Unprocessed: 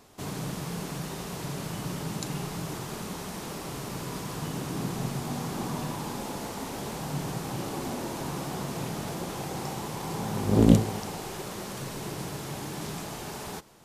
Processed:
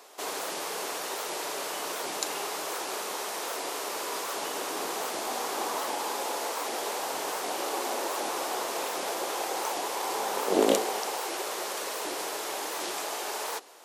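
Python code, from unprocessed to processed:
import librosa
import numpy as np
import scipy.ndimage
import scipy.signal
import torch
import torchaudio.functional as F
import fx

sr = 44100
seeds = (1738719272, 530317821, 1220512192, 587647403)

y = scipy.signal.sosfilt(scipy.signal.butter(4, 420.0, 'highpass', fs=sr, output='sos'), x)
y = fx.record_warp(y, sr, rpm=78.0, depth_cents=250.0)
y = F.gain(torch.from_numpy(y), 6.0).numpy()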